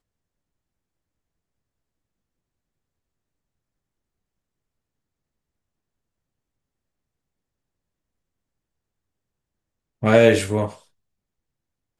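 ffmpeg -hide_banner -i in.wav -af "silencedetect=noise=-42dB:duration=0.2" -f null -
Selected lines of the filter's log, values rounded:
silence_start: 0.00
silence_end: 10.02 | silence_duration: 10.02
silence_start: 10.78
silence_end: 12.00 | silence_duration: 1.21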